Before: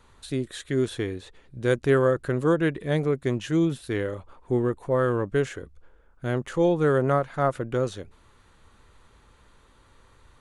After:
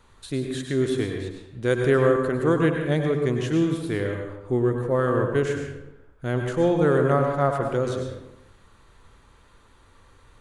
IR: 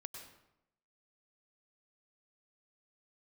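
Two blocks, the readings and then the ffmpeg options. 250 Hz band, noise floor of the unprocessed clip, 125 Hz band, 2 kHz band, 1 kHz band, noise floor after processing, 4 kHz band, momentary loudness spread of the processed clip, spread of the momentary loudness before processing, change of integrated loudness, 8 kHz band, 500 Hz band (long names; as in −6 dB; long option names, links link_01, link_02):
+2.0 dB, −58 dBFS, +2.5 dB, +2.0 dB, +2.0 dB, −55 dBFS, +1.5 dB, 13 LU, 11 LU, +2.0 dB, +1.5 dB, +2.0 dB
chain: -filter_complex "[1:a]atrim=start_sample=2205[link_01];[0:a][link_01]afir=irnorm=-1:irlink=0,volume=6dB"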